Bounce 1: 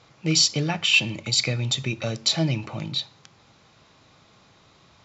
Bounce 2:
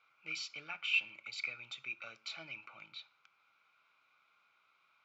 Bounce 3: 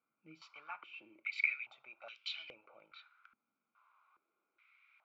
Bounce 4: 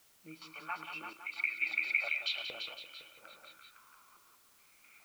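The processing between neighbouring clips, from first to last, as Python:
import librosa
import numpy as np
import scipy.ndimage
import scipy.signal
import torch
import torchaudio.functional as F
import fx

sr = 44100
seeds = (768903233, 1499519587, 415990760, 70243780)

y1 = fx.double_bandpass(x, sr, hz=1800.0, octaves=0.72)
y1 = F.gain(torch.from_numpy(y1), -6.0).numpy()
y2 = fx.filter_held_bandpass(y1, sr, hz=2.4, low_hz=240.0, high_hz=3100.0)
y2 = F.gain(torch.from_numpy(y2), 9.0).numpy()
y3 = fx.echo_multitap(y2, sr, ms=(109, 182, 340, 509, 674, 687), db=(-17.0, -9.5, -7.5, -6.0, -11.0, -11.0))
y3 = fx.chopper(y3, sr, hz=0.62, depth_pct=60, duty_pct=70)
y3 = fx.quant_dither(y3, sr, seeds[0], bits=12, dither='triangular')
y3 = F.gain(torch.from_numpy(y3), 6.5).numpy()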